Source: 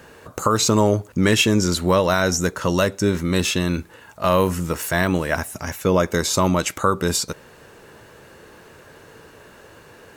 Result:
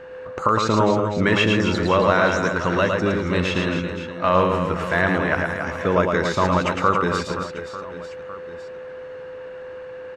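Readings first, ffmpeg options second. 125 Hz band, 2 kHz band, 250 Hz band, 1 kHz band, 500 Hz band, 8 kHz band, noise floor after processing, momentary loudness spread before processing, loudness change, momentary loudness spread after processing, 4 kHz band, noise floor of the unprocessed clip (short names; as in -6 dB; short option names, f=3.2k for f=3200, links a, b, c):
-1.5 dB, +3.0 dB, -1.5 dB, +3.0 dB, +0.5 dB, -14.5 dB, -36 dBFS, 8 LU, 0.0 dB, 18 LU, -4.0 dB, -47 dBFS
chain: -filter_complex "[0:a]lowpass=1.8k,tiltshelf=f=1.2k:g=-6,aeval=exprs='val(0)+0.0112*sin(2*PI*510*n/s)':c=same,asplit=2[a][b];[b]aecho=0:1:110|275|522.5|893.8|1451:0.631|0.398|0.251|0.158|0.1[c];[a][c]amix=inputs=2:normalize=0,volume=2dB"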